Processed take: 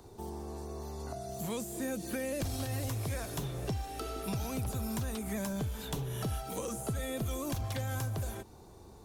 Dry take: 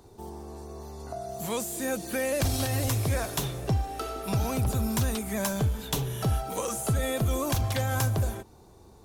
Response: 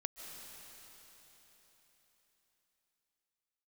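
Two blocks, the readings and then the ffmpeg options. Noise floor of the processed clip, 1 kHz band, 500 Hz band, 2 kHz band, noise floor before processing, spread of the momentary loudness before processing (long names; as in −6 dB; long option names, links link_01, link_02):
−53 dBFS, −8.0 dB, −7.0 dB, −8.5 dB, −53 dBFS, 14 LU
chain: -filter_complex "[0:a]acrossover=split=420|1800[link_01][link_02][link_03];[link_01]acompressor=threshold=-35dB:ratio=4[link_04];[link_02]acompressor=threshold=-45dB:ratio=4[link_05];[link_03]acompressor=threshold=-44dB:ratio=4[link_06];[link_04][link_05][link_06]amix=inputs=3:normalize=0"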